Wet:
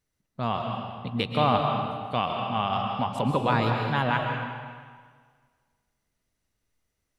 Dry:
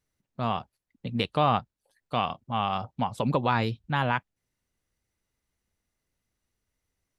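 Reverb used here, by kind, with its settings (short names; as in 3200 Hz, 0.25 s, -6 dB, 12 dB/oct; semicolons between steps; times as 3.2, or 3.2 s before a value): digital reverb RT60 1.7 s, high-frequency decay 0.9×, pre-delay 95 ms, DRR 1.5 dB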